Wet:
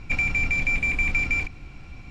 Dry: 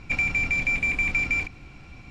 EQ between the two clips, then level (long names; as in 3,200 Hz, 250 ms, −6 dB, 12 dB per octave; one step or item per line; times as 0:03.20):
low-shelf EQ 68 Hz +8 dB
0.0 dB